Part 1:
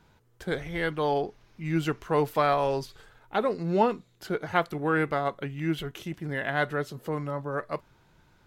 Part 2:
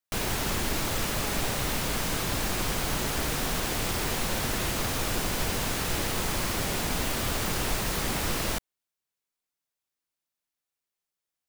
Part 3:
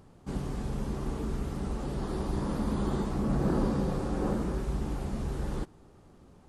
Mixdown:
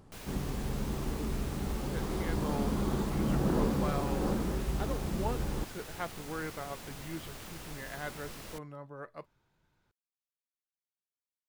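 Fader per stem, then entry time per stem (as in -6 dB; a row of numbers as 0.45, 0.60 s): -13.5, -17.0, -1.5 dB; 1.45, 0.00, 0.00 s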